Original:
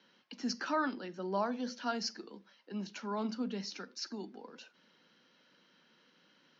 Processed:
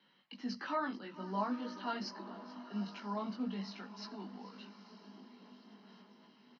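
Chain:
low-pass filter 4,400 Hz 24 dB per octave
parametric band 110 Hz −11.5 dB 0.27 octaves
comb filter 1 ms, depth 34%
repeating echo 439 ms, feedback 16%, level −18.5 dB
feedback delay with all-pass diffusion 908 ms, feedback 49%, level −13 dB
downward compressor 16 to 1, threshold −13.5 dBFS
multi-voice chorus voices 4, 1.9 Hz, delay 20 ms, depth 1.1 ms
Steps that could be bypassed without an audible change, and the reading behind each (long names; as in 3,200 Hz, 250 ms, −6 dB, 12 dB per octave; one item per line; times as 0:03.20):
downward compressor, threshold −13.5 dBFS: peak of its input −21.0 dBFS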